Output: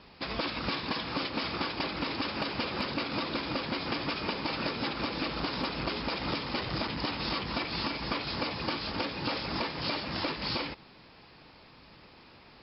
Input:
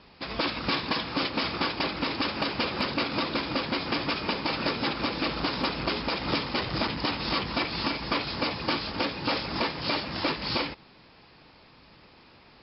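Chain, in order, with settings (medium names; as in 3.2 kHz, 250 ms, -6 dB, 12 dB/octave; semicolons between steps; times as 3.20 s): compression, threshold -29 dBFS, peak gain reduction 7 dB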